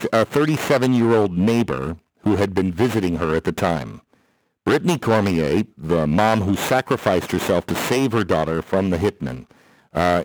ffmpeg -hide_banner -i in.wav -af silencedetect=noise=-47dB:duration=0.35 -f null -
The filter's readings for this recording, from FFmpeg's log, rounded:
silence_start: 4.14
silence_end: 4.66 | silence_duration: 0.52